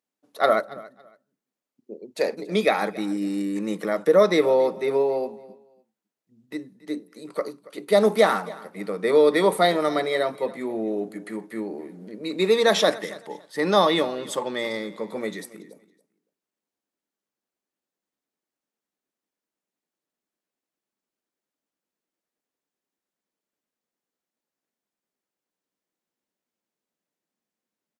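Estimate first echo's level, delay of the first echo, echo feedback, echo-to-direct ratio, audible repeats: -20.0 dB, 279 ms, 22%, -20.0 dB, 2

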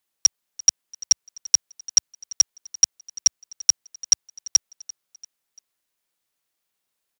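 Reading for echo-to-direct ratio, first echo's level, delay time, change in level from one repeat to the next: -19.5 dB, -20.5 dB, 342 ms, -6.5 dB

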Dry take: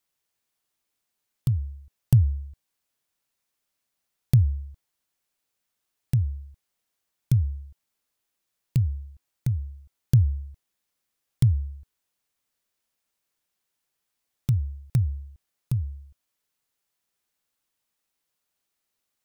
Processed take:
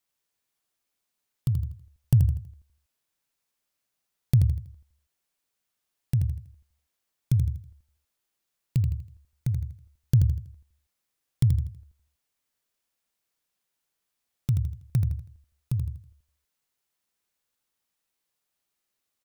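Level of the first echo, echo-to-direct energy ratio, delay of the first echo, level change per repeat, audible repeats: -7.0 dB, -6.5 dB, 81 ms, -8.5 dB, 4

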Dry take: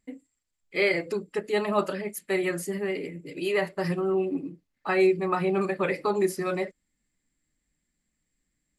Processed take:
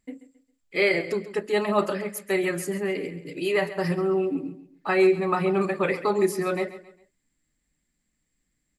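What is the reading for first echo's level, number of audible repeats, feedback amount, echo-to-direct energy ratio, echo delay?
-14.5 dB, 3, 35%, -14.0 dB, 135 ms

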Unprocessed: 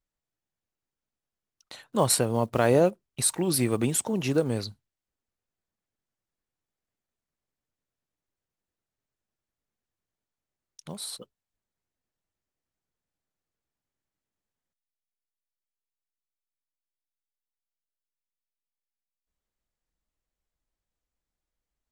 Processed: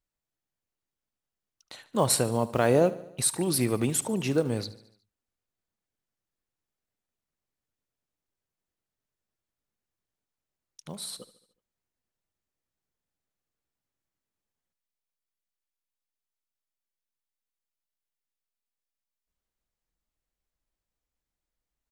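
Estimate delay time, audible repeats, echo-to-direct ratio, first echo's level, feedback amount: 73 ms, 4, -16.0 dB, -17.5 dB, 57%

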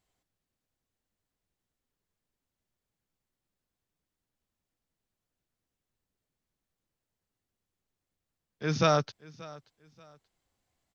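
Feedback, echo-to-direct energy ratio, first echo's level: 29%, -20.5 dB, -21.0 dB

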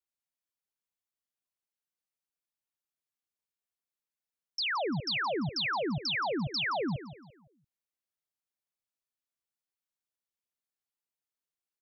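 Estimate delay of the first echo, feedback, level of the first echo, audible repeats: 171 ms, 37%, -13.5 dB, 3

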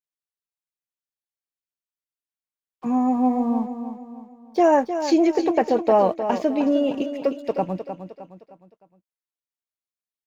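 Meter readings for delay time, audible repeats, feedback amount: 308 ms, 4, 41%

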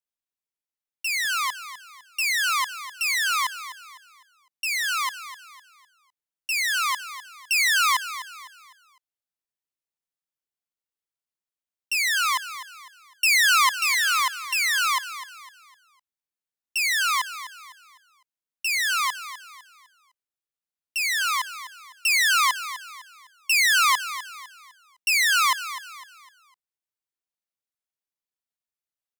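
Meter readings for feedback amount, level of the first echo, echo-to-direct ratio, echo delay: 37%, -13.0 dB, -12.5 dB, 253 ms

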